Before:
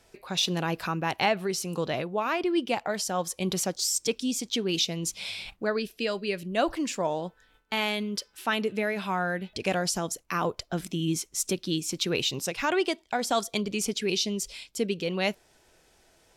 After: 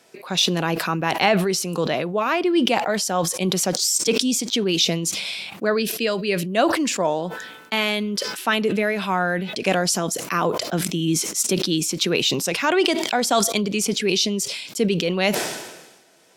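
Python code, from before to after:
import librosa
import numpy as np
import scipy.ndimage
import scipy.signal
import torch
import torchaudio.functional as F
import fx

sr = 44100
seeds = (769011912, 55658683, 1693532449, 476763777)

y = scipy.signal.sosfilt(scipy.signal.butter(4, 150.0, 'highpass', fs=sr, output='sos'), x)
y = fx.notch(y, sr, hz=850.0, q=28.0)
y = fx.sustainer(y, sr, db_per_s=50.0)
y = y * librosa.db_to_amplitude(6.5)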